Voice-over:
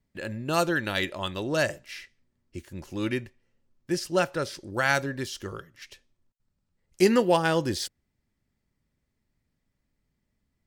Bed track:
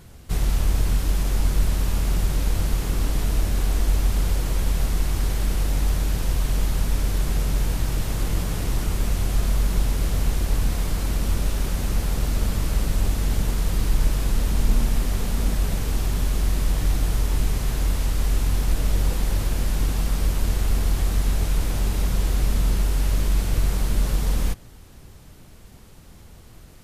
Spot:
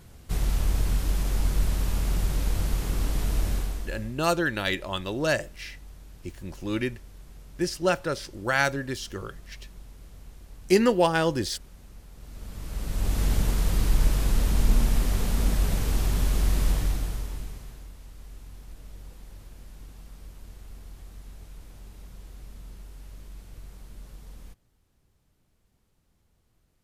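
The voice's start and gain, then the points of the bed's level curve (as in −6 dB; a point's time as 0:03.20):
3.70 s, +0.5 dB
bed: 0:03.53 −4 dB
0:04.21 −24.5 dB
0:12.12 −24.5 dB
0:13.20 −1.5 dB
0:16.70 −1.5 dB
0:17.92 −23 dB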